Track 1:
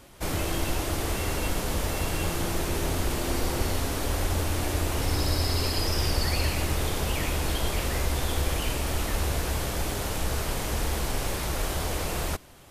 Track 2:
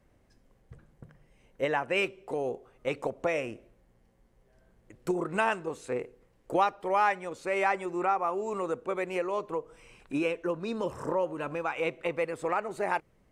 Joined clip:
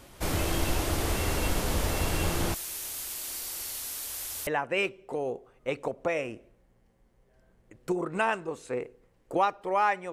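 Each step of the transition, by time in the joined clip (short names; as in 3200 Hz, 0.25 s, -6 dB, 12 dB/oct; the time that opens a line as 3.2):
track 1
2.54–4.47 pre-emphasis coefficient 0.97
4.47 switch to track 2 from 1.66 s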